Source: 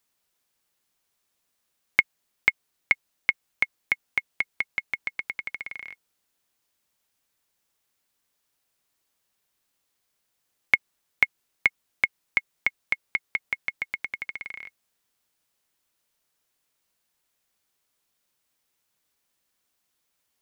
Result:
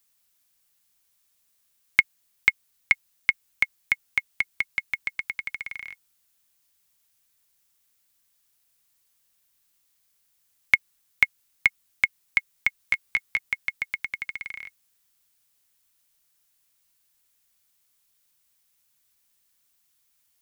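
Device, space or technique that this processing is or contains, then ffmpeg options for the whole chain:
smiley-face EQ: -filter_complex "[0:a]asettb=1/sr,asplit=3[a][b][c];[a]atrim=end=12.784[d];[b]atrim=start=12.78:end=13.39,asetpts=PTS-STARTPTS,afade=t=in:d=0.004:c=qsin,afade=t=out:st=0.606:d=0.004:c=qsin,asplit=2[e][f];[f]adelay=16,volume=-6.5dB[g];[e][g]amix=inputs=2:normalize=0,atrim=end_sample=26901[h];[c]atrim=start=13.386[i];[d][h]acrossfade=d=0.004:c1=hsin:c2=qsin[j];[j][i]acrossfade=d=0.004:c1=qsin:c2=hsin,lowshelf=f=160:g=3,equalizer=f=430:t=o:w=2.5:g=-8,highshelf=f=7.2k:g=7.5,volume=2dB"

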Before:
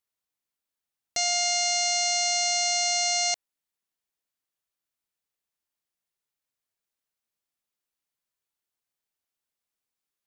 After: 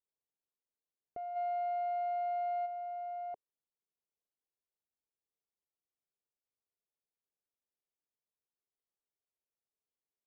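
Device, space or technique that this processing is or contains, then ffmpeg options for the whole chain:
under water: -filter_complex "[0:a]asplit=3[a][b][c];[a]afade=t=out:st=1.35:d=0.02[d];[b]equalizer=f=125:t=o:w=1:g=8,equalizer=f=250:t=o:w=1:g=7,equalizer=f=500:t=o:w=1:g=3,equalizer=f=1k:t=o:w=1:g=6,equalizer=f=2k:t=o:w=1:g=6,equalizer=f=4k:t=o:w=1:g=10,afade=t=in:st=1.35:d=0.02,afade=t=out:st=2.65:d=0.02[e];[c]afade=t=in:st=2.65:d=0.02[f];[d][e][f]amix=inputs=3:normalize=0,lowpass=f=1k:w=0.5412,lowpass=f=1k:w=1.3066,equalizer=f=430:t=o:w=0.59:g=7.5,volume=-8.5dB"

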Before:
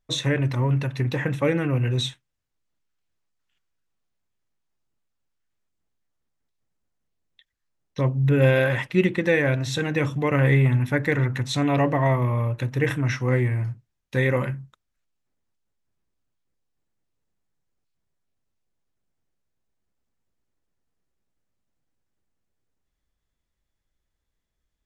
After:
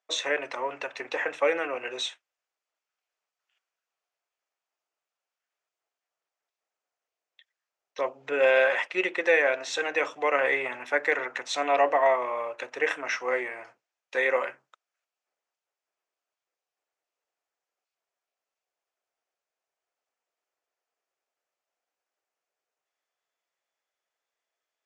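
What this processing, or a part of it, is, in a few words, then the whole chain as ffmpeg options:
phone speaker on a table: -af "highpass=f=460:w=0.5412,highpass=f=460:w=1.3066,equalizer=f=700:t=q:w=4:g=5,equalizer=f=1.3k:t=q:w=4:g=3,equalizer=f=2.5k:t=q:w=4:g=3,equalizer=f=3.9k:t=q:w=4:g=-4,lowpass=f=7.6k:w=0.5412,lowpass=f=7.6k:w=1.3066"

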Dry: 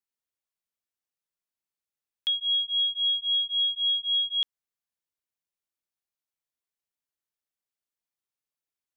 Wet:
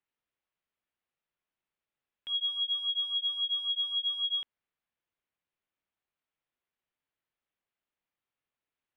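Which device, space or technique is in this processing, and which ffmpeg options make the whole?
synthesiser wavefolder: -af "aeval=exprs='0.0447*(abs(mod(val(0)/0.0447+3,4)-2)-1)':c=same,lowpass=f=3.2k:w=0.5412,lowpass=f=3.2k:w=1.3066,volume=5.5dB"

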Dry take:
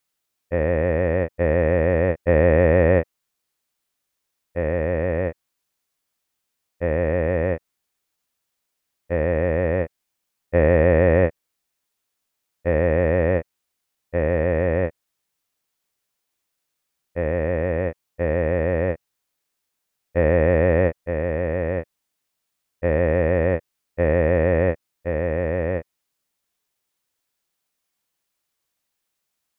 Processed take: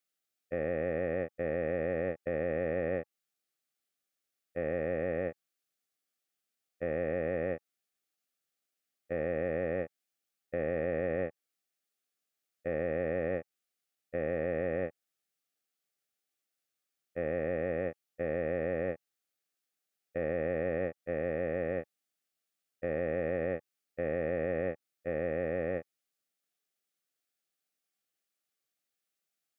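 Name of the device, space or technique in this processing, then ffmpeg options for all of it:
PA system with an anti-feedback notch: -af "highpass=150,asuperstop=centerf=970:order=12:qfactor=3.7,alimiter=limit=-14dB:level=0:latency=1:release=178,volume=-8.5dB"

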